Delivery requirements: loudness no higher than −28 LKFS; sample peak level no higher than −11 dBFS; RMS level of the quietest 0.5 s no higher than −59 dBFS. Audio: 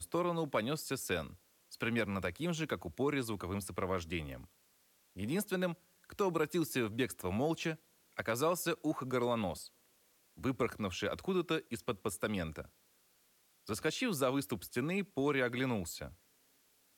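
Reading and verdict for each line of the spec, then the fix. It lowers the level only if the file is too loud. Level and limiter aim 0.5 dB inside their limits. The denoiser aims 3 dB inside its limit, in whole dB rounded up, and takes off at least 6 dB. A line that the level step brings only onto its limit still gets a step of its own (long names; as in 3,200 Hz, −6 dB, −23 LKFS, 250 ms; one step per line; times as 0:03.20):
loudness −36.5 LKFS: in spec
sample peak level −19.5 dBFS: in spec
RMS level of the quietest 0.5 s −71 dBFS: in spec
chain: no processing needed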